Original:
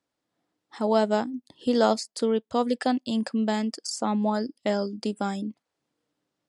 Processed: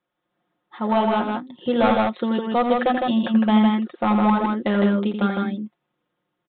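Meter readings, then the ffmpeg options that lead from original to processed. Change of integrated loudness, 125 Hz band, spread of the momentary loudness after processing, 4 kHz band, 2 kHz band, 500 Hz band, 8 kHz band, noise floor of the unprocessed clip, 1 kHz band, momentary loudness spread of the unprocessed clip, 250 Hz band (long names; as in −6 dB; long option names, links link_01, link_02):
+6.0 dB, can't be measured, 10 LU, +2.0 dB, +8.0 dB, +2.5 dB, below −40 dB, −84 dBFS, +7.5 dB, 8 LU, +7.5 dB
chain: -af "equalizer=frequency=1200:width=2.1:gain=4.5,aecho=1:1:5.6:0.74,dynaudnorm=framelen=200:gausssize=13:maxgain=4dB,aresample=8000,volume=13.5dB,asoftclip=hard,volume=-13.5dB,aresample=44100,aecho=1:1:84|158:0.398|0.708"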